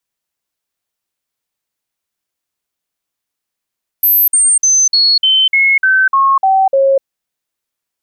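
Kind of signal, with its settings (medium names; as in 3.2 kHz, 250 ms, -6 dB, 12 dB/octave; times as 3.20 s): stepped sine 12.3 kHz down, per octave 2, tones 10, 0.25 s, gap 0.05 s -7 dBFS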